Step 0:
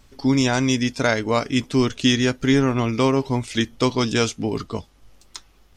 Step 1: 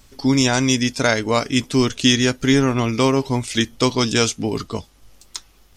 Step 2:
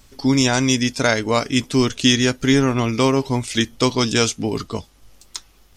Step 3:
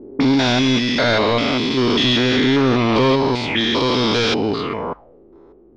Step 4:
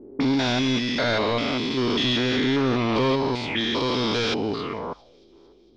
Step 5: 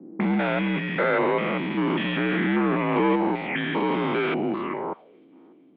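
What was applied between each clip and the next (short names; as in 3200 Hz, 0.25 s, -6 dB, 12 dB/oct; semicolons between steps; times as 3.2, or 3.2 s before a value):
high shelf 4600 Hz +8 dB; gain +1.5 dB
nothing audible
stepped spectrum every 0.2 s; overdrive pedal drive 26 dB, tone 1000 Hz, clips at -3 dBFS; envelope low-pass 300–4200 Hz up, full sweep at -15 dBFS; gain -2.5 dB
thin delay 0.227 s, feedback 68%, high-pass 4000 Hz, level -23 dB; gain -6.5 dB
mistuned SSB -71 Hz 280–2600 Hz; gain +2 dB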